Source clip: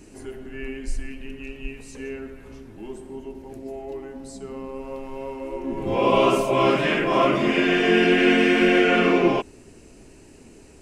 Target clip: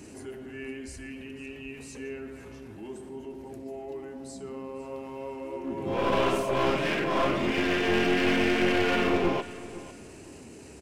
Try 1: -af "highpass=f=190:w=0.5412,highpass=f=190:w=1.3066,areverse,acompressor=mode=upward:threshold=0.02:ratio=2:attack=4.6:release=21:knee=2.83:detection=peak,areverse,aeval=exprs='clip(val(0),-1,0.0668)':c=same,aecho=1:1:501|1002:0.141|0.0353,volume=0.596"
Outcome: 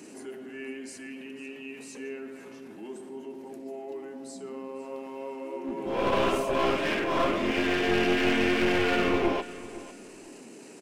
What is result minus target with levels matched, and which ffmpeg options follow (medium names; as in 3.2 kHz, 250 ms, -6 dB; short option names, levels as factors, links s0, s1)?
125 Hz band -3.0 dB
-af "highpass=f=62:w=0.5412,highpass=f=62:w=1.3066,areverse,acompressor=mode=upward:threshold=0.02:ratio=2:attack=4.6:release=21:knee=2.83:detection=peak,areverse,aeval=exprs='clip(val(0),-1,0.0668)':c=same,aecho=1:1:501|1002:0.141|0.0353,volume=0.596"